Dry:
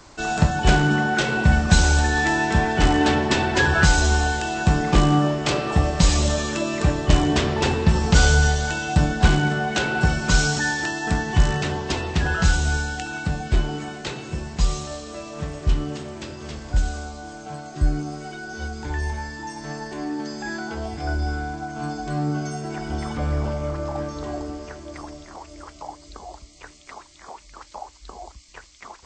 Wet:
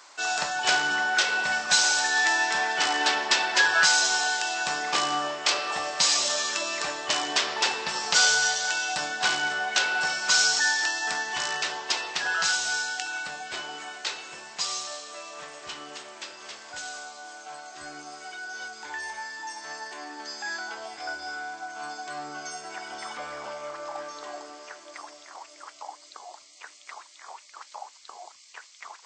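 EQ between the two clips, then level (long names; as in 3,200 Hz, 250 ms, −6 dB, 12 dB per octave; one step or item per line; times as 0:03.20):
high-pass filter 890 Hz 12 dB per octave
dynamic equaliser 5,100 Hz, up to +6 dB, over −43 dBFS, Q 1.8
0.0 dB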